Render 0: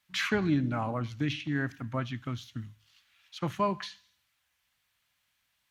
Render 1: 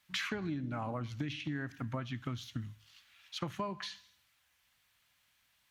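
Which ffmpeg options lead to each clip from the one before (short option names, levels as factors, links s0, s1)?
-af "acompressor=threshold=0.0141:ratio=10,volume=1.41"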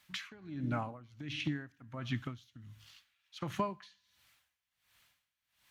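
-af "aeval=exprs='val(0)*pow(10,-22*(0.5-0.5*cos(2*PI*1.4*n/s))/20)':c=same,volume=1.78"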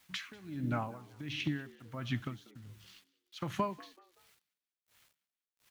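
-filter_complex "[0:a]acrusher=bits=10:mix=0:aa=0.000001,asplit=4[s0][s1][s2][s3];[s1]adelay=190,afreqshift=84,volume=0.0794[s4];[s2]adelay=380,afreqshift=168,volume=0.0295[s5];[s3]adelay=570,afreqshift=252,volume=0.0108[s6];[s0][s4][s5][s6]amix=inputs=4:normalize=0,volume=1.12"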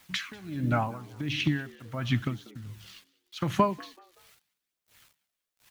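-af "aphaser=in_gain=1:out_gain=1:delay=1.9:decay=0.26:speed=0.83:type=triangular,volume=2.37"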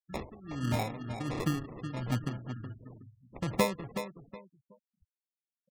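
-filter_complex "[0:a]asplit=2[s0][s1];[s1]adelay=370,lowpass=f=4800:p=1,volume=0.355,asplit=2[s2][s3];[s3]adelay=370,lowpass=f=4800:p=1,volume=0.28,asplit=2[s4][s5];[s5]adelay=370,lowpass=f=4800:p=1,volume=0.28[s6];[s0][s2][s4][s6]amix=inputs=4:normalize=0,acrusher=samples=29:mix=1:aa=0.000001,afftfilt=real='re*gte(hypot(re,im),0.00794)':imag='im*gte(hypot(re,im),0.00794)':win_size=1024:overlap=0.75,volume=0.631"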